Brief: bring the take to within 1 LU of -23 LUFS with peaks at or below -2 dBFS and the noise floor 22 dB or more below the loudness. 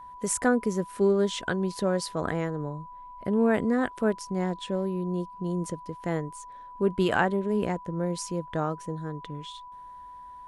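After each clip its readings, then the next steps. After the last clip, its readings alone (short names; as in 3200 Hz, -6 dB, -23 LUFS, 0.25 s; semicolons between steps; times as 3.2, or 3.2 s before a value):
steady tone 990 Hz; tone level -42 dBFS; loudness -28.5 LUFS; peak -9.5 dBFS; loudness target -23.0 LUFS
-> notch 990 Hz, Q 30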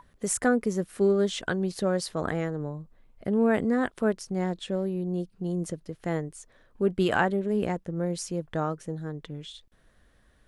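steady tone none; loudness -28.5 LUFS; peak -10.0 dBFS; loudness target -23.0 LUFS
-> gain +5.5 dB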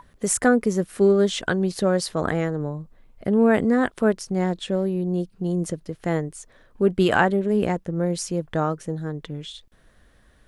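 loudness -23.0 LUFS; peak -4.5 dBFS; noise floor -57 dBFS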